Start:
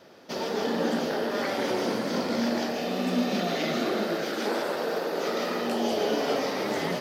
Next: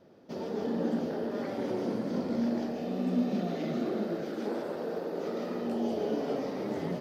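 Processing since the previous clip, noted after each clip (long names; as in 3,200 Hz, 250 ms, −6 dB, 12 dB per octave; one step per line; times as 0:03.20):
tilt shelving filter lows +8.5 dB, about 680 Hz
level −8 dB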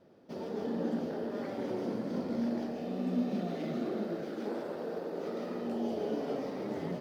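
running median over 5 samples
level −3 dB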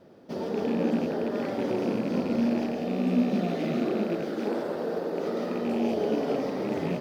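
loose part that buzzes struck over −39 dBFS, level −40 dBFS
level +7.5 dB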